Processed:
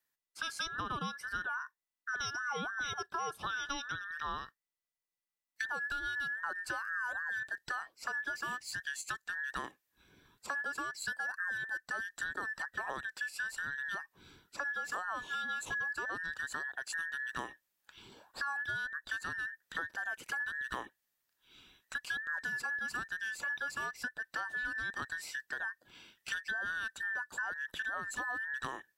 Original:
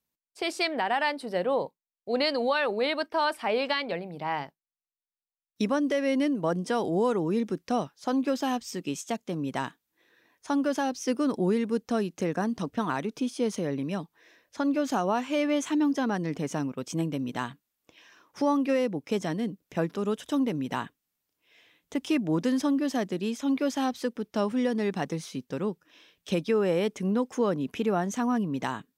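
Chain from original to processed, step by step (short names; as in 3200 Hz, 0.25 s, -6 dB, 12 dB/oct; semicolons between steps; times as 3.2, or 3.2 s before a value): band inversion scrambler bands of 2000 Hz; dynamic EQ 2200 Hz, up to -4 dB, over -38 dBFS, Q 0.79; compressor 4:1, threshold -36 dBFS, peak gain reduction 11 dB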